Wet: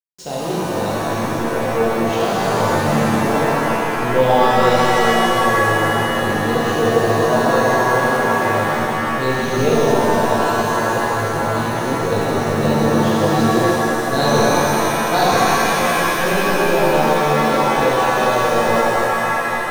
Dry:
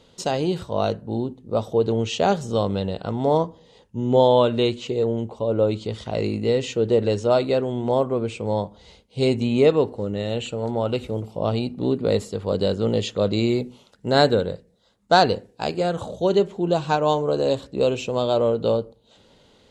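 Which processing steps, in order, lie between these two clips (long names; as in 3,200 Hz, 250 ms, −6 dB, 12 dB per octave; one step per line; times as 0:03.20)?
hold until the input has moved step −34.5 dBFS
reverb with rising layers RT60 3.7 s, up +7 semitones, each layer −2 dB, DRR −8.5 dB
level −7 dB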